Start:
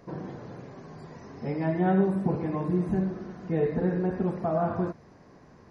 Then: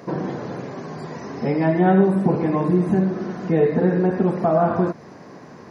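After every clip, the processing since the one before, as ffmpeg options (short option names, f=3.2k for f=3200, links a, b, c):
-filter_complex "[0:a]highpass=150,asplit=2[a][b];[b]acompressor=threshold=-34dB:ratio=6,volume=1dB[c];[a][c]amix=inputs=2:normalize=0,volume=6.5dB"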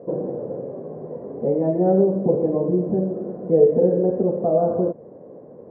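-af "lowpass=f=520:t=q:w=4.9,volume=-6dB"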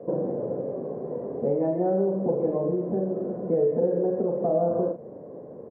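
-filter_complex "[0:a]acrossover=split=120|280|710[a][b][c][d];[a]acompressor=threshold=-51dB:ratio=4[e];[b]acompressor=threshold=-34dB:ratio=4[f];[c]acompressor=threshold=-28dB:ratio=4[g];[d]acompressor=threshold=-30dB:ratio=4[h];[e][f][g][h]amix=inputs=4:normalize=0,asplit=2[i][j];[j]adelay=41,volume=-7.5dB[k];[i][k]amix=inputs=2:normalize=0"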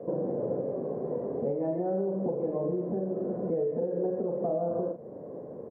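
-af "alimiter=limit=-21dB:level=0:latency=1:release=449"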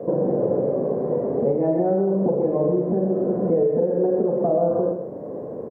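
-af "aecho=1:1:125:0.376,volume=9dB"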